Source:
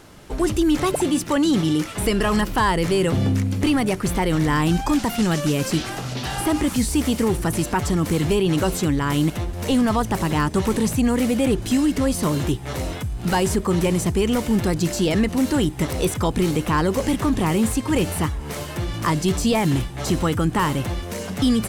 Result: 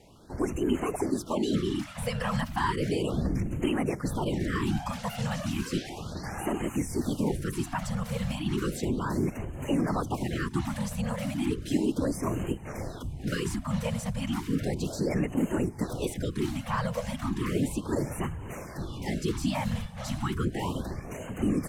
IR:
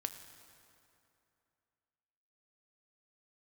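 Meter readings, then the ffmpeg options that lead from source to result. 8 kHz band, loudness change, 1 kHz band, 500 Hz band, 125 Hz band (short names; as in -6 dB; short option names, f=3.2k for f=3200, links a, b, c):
-12.5 dB, -9.5 dB, -10.0 dB, -9.5 dB, -8.5 dB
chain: -af "afftfilt=real='hypot(re,im)*cos(2*PI*random(0))':imag='hypot(re,im)*sin(2*PI*random(1))':win_size=512:overlap=0.75,highshelf=f=5.6k:g=-5.5,afftfilt=real='re*(1-between(b*sr/1024,310*pow(4500/310,0.5+0.5*sin(2*PI*0.34*pts/sr))/1.41,310*pow(4500/310,0.5+0.5*sin(2*PI*0.34*pts/sr))*1.41))':imag='im*(1-between(b*sr/1024,310*pow(4500/310,0.5+0.5*sin(2*PI*0.34*pts/sr))/1.41,310*pow(4500/310,0.5+0.5*sin(2*PI*0.34*pts/sr))*1.41))':win_size=1024:overlap=0.75,volume=-2.5dB"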